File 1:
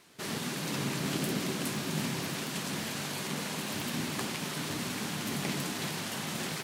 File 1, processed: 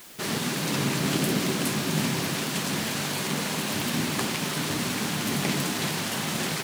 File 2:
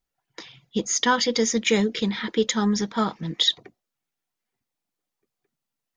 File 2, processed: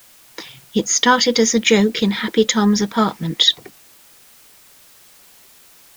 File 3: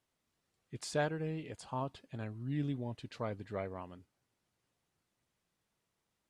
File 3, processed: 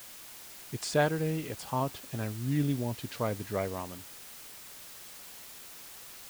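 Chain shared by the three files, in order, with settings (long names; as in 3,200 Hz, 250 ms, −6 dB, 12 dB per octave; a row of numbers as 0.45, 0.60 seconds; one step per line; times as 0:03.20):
background noise white −55 dBFS
level +7 dB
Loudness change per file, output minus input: +7.0, +7.0, +7.0 LU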